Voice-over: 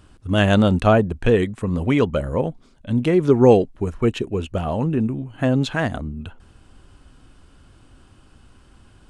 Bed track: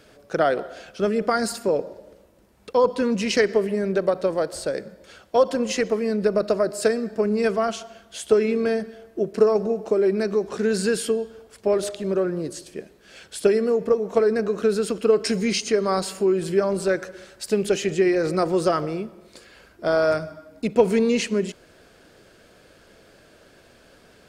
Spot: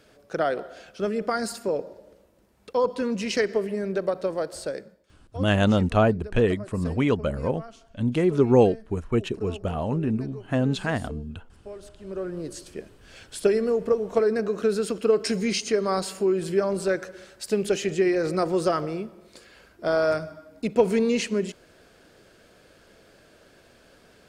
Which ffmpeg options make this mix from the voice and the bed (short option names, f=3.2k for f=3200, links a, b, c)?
-filter_complex "[0:a]adelay=5100,volume=-4.5dB[a];[1:a]volume=12.5dB,afade=t=out:st=4.69:d=0.35:silence=0.177828,afade=t=in:st=11.95:d=0.67:silence=0.141254[b];[a][b]amix=inputs=2:normalize=0"